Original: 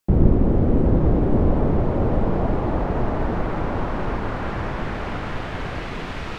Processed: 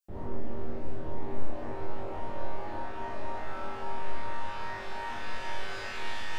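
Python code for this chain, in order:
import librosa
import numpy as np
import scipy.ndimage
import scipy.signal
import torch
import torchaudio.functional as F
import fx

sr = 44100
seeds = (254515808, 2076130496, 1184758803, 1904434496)

y = fx.peak_eq(x, sr, hz=160.0, db=-9.5, octaves=1.9)
y = fx.resonator_bank(y, sr, root=39, chord='sus4', decay_s=0.81)
y = fx.room_flutter(y, sr, wall_m=3.5, rt60_s=0.59)
y = fx.rider(y, sr, range_db=10, speed_s=0.5)
y = fx.high_shelf(y, sr, hz=3700.0, db=9.5)
y = fx.hum_notches(y, sr, base_hz=50, count=7)
y = fx.doppler_dist(y, sr, depth_ms=0.32)
y = y * 10.0 ** (2.0 / 20.0)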